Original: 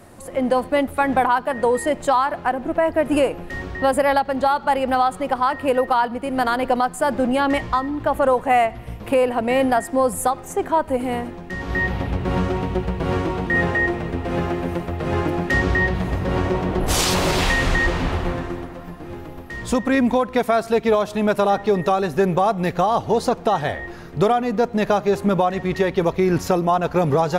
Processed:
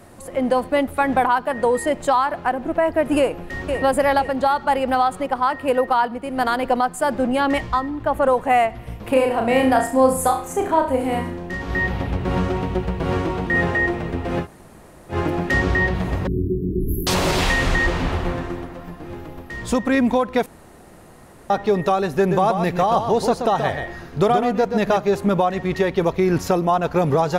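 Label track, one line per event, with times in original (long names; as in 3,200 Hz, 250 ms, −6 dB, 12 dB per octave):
3.180000	3.790000	delay throw 500 ms, feedback 35%, level −6 dB
5.260000	8.280000	multiband upward and downward expander depth 40%
9.120000	11.570000	flutter between parallel walls apart 5.9 metres, dies away in 0.41 s
14.430000	15.130000	fill with room tone, crossfade 0.10 s
16.270000	17.070000	linear-phase brick-wall band-stop 440–11,000 Hz
20.460000	21.500000	fill with room tone
22.180000	24.980000	single-tap delay 128 ms −7 dB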